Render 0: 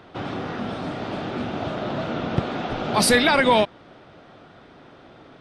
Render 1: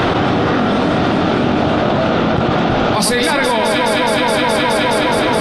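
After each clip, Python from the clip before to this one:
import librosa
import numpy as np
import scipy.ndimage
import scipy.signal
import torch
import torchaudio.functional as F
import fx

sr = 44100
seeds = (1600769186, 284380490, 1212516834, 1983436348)

y = fx.doubler(x, sr, ms=23.0, db=-11)
y = fx.echo_alternate(y, sr, ms=105, hz=1600.0, feedback_pct=84, wet_db=-5.0)
y = fx.env_flatten(y, sr, amount_pct=100)
y = y * librosa.db_to_amplitude(-1.0)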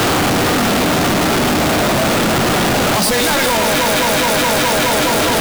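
y = np.sign(x) * np.sqrt(np.mean(np.square(x)))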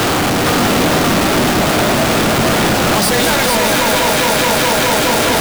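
y = x + 10.0 ** (-4.5 / 20.0) * np.pad(x, (int(458 * sr / 1000.0), 0))[:len(x)]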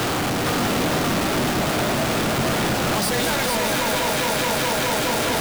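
y = fx.peak_eq(x, sr, hz=130.0, db=3.0, octaves=0.39)
y = y * librosa.db_to_amplitude(-8.5)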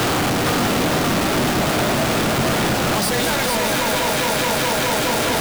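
y = fx.rider(x, sr, range_db=10, speed_s=0.5)
y = y * librosa.db_to_amplitude(2.5)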